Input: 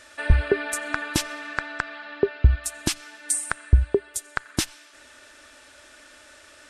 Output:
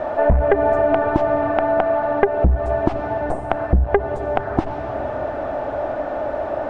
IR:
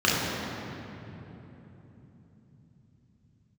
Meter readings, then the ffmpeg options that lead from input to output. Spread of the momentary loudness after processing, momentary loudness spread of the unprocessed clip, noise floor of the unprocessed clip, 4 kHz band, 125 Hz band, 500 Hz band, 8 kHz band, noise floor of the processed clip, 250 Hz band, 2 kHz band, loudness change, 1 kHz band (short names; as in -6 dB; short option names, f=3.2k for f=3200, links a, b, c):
8 LU, 10 LU, -51 dBFS, under -10 dB, +2.0 dB, +13.0 dB, under -30 dB, -27 dBFS, +9.0 dB, +0.5 dB, +5.5 dB, +15.0 dB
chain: -filter_complex "[0:a]aeval=exprs='val(0)+0.5*0.0282*sgn(val(0))':c=same,aeval=exprs='(tanh(3.55*val(0)+0.7)-tanh(0.7))/3.55':c=same,lowpass=f=720:t=q:w=4.9,asplit=2[a][b];[1:a]atrim=start_sample=2205[c];[b][c]afir=irnorm=-1:irlink=0,volume=-38.5dB[d];[a][d]amix=inputs=2:normalize=0,aeval=exprs='0.422*sin(PI/2*1.78*val(0)/0.422)':c=same,acompressor=threshold=-18dB:ratio=6,volume=6dB"